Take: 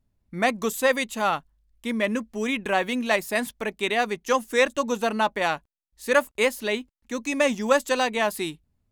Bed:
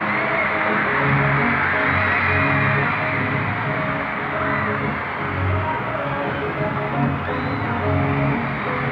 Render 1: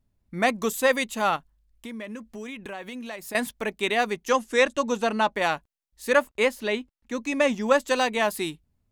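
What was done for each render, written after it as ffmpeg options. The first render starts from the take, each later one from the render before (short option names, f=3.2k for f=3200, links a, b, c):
-filter_complex "[0:a]asettb=1/sr,asplit=3[a][b][c];[a]atrim=end=1.364[d];[b]atrim=start=1.36:end=3.35,asetpts=PTS-STARTPTS,afade=t=in:d=0.004:c=qsin,afade=t=out:st=1.986:d=0.004:c=qsin,acompressor=threshold=-35dB:ratio=4:attack=3.2:release=140:knee=1:detection=peak[e];[c]atrim=start=3.346[f];[d][e]acrossfade=d=0.004:c1=hsin:c2=qsin[g];[g][f]acrossfade=d=0.004:c1=qsin:c2=hsin,asettb=1/sr,asplit=3[h][i][j];[h]atrim=end=4.304[k];[i]atrim=start=4.3:end=5.36,asetpts=PTS-STARTPTS,afade=t=in:d=0.004:c=qsin,afade=t=out:st=1.056:d=0.004:c=qsin,lowpass=8.8k[l];[j]atrim=start=5.356[m];[k][l]acrossfade=d=0.004:c1=hsin:c2=qsin[n];[n][m]acrossfade=d=0.004:c1=qsin:c2=hsin,asettb=1/sr,asplit=3[o][p][q];[o]atrim=end=6.124[r];[p]atrim=start=6.12:end=7.89,asetpts=PTS-STARTPTS,afade=t=in:d=0.004:c=qsin,afade=t=out:st=1.766:d=0.004:c=qsin,highshelf=f=6.2k:g=-9[s];[q]atrim=start=7.886[t];[r][s]acrossfade=d=0.004:c1=hsin:c2=qsin[u];[u][t]acrossfade=d=0.004:c1=qsin:c2=hsin"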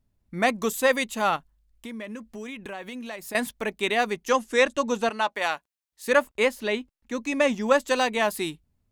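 -filter_complex "[0:a]asettb=1/sr,asplit=3[a][b][c];[a]atrim=end=5.094[d];[b]atrim=start=5.09:end=6.08,asetpts=PTS-STARTPTS,afade=t=in:d=0.004:c=qsin,afade=t=out:st=0.986:d=0.004:c=qsin,highpass=f=720:p=1[e];[c]atrim=start=6.076[f];[d][e]acrossfade=d=0.004:c1=hsin:c2=qsin[g];[g][f]acrossfade=d=0.004:c1=qsin:c2=hsin"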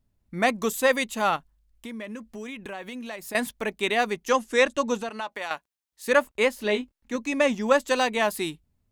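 -filter_complex "[0:a]asettb=1/sr,asplit=3[a][b][c];[a]atrim=end=5.014[d];[b]atrim=start=5.01:end=5.51,asetpts=PTS-STARTPTS,afade=t=in:d=0.004:c=qsin,afade=t=out:st=0.496:d=0.004:c=qsin,acompressor=threshold=-31dB:ratio=2.5:attack=3.2:release=140:knee=1:detection=peak[e];[c]atrim=start=5.506[f];[d][e]acrossfade=d=0.004:c1=hsin:c2=qsin[g];[g][f]acrossfade=d=0.004:c1=qsin:c2=hsin,asettb=1/sr,asplit=3[h][i][j];[h]atrim=end=6.564[k];[i]atrim=start=6.56:end=7.16,asetpts=PTS-STARTPTS,afade=t=in:d=0.004:c=qsin,afade=t=out:st=0.596:d=0.004:c=qsin,asplit=2[l][m];[m]adelay=24,volume=-6dB[n];[l][n]amix=inputs=2:normalize=0,atrim=end_sample=26460[o];[j]atrim=start=7.156[p];[k][o]acrossfade=d=0.004:c1=hsin:c2=qsin[q];[q][p]acrossfade=d=0.004:c1=qsin:c2=hsin"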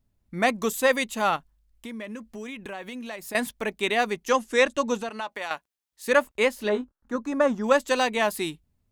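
-filter_complex "[0:a]asettb=1/sr,asplit=3[a][b][c];[a]atrim=end=6.694[d];[b]atrim=start=6.69:end=7.64,asetpts=PTS-STARTPTS,afade=t=in:d=0.004:c=qsin,afade=t=out:st=0.946:d=0.004:c=qsin,highshelf=f=1.8k:t=q:w=3:g=-8[e];[c]atrim=start=7.636[f];[d][e]acrossfade=d=0.004:c1=hsin:c2=qsin[g];[g][f]acrossfade=d=0.004:c1=qsin:c2=hsin"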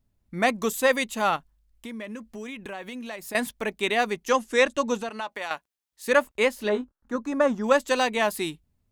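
-af anull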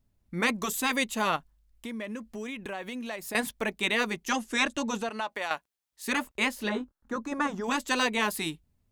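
-af "afftfilt=real='re*lt(hypot(re,im),0.447)':imag='im*lt(hypot(re,im),0.447)':win_size=1024:overlap=0.75"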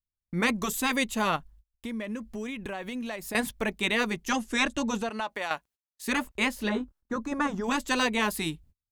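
-af "agate=range=-33dB:threshold=-56dB:ratio=16:detection=peak,lowshelf=f=130:g=11.5"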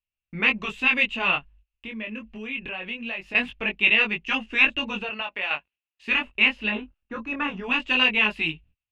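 -af "lowpass=f=2.7k:t=q:w=9.1,flanger=delay=18.5:depth=4.5:speed=0.23"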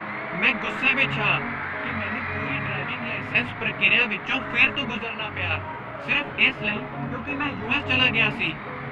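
-filter_complex "[1:a]volume=-11dB[a];[0:a][a]amix=inputs=2:normalize=0"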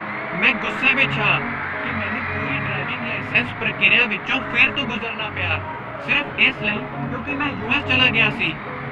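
-af "volume=4dB,alimiter=limit=-3dB:level=0:latency=1"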